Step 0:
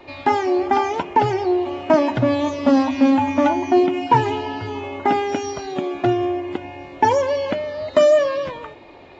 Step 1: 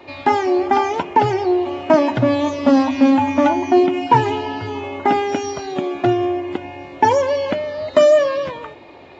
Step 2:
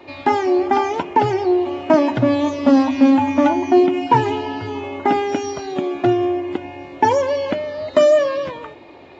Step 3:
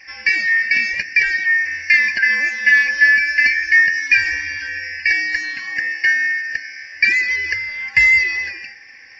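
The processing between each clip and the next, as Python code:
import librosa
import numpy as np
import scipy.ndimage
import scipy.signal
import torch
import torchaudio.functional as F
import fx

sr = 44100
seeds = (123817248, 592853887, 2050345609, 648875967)

y1 = scipy.signal.sosfilt(scipy.signal.butter(2, 67.0, 'highpass', fs=sr, output='sos'), x)
y1 = F.gain(torch.from_numpy(y1), 2.0).numpy()
y2 = fx.peak_eq(y1, sr, hz=310.0, db=3.0, octaves=0.73)
y2 = F.gain(torch.from_numpy(y2), -1.5).numpy()
y3 = fx.band_shuffle(y2, sr, order='3142')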